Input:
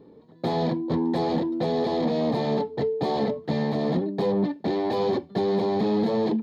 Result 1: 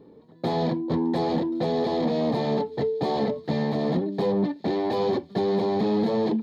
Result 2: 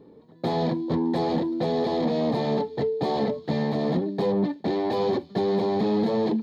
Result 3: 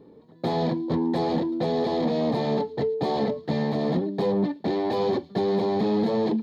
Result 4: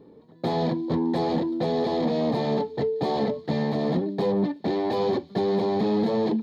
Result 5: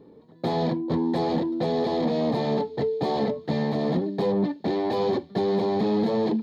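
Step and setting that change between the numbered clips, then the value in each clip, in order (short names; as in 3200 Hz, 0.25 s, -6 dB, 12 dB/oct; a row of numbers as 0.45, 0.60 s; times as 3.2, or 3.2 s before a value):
thin delay, time: 1.11, 0.285, 0.112, 0.179, 0.484 s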